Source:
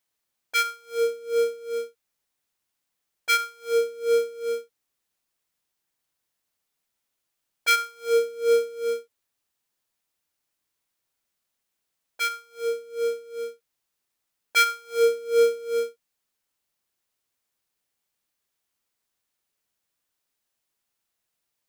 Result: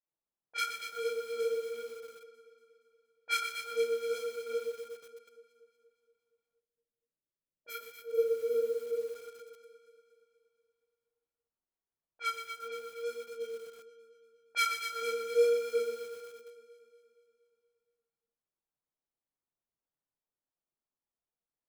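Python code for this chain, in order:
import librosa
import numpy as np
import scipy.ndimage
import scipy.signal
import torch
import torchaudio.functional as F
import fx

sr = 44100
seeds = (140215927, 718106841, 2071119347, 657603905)

y = fx.chorus_voices(x, sr, voices=4, hz=0.82, base_ms=29, depth_ms=4.5, mix_pct=65)
y = fx.env_lowpass(y, sr, base_hz=980.0, full_db=-26.5)
y = fx.echo_alternate(y, sr, ms=118, hz=1500.0, feedback_pct=74, wet_db=-6.5)
y = fx.spec_box(y, sr, start_s=6.6, length_s=2.55, low_hz=630.0, high_hz=11000.0, gain_db=-14)
y = fx.echo_crushed(y, sr, ms=123, feedback_pct=55, bits=7, wet_db=-7.5)
y = y * librosa.db_to_amplitude(-7.0)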